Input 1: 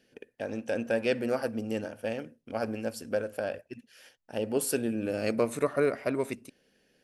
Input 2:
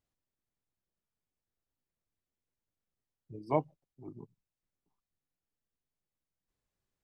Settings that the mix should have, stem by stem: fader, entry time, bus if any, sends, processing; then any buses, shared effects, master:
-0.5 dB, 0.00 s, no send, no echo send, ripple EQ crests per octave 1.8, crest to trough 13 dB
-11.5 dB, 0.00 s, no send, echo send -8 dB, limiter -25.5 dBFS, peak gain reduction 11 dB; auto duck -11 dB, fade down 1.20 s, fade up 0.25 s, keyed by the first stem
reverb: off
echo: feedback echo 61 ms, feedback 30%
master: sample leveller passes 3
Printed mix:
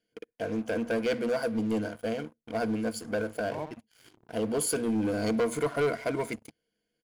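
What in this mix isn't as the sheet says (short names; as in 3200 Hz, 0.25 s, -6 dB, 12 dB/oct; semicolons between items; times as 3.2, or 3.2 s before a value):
stem 1 -0.5 dB -> -10.0 dB; stem 2: missing limiter -25.5 dBFS, peak gain reduction 11 dB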